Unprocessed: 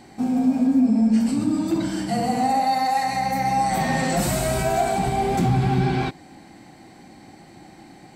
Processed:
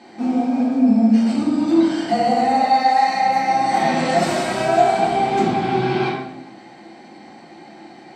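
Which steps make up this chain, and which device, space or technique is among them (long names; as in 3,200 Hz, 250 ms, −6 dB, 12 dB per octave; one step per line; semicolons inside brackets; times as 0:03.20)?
supermarket ceiling speaker (band-pass filter 270–5,000 Hz; convolution reverb RT60 0.85 s, pre-delay 3 ms, DRR −3 dB)
level +1 dB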